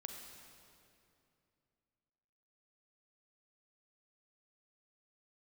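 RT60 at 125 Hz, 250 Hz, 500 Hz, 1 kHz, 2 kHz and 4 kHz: 3.2, 3.1, 2.8, 2.5, 2.3, 2.1 s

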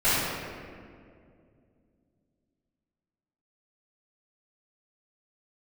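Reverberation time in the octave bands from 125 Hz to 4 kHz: 3.3, 3.3, 2.6, 1.9, 1.7, 1.2 s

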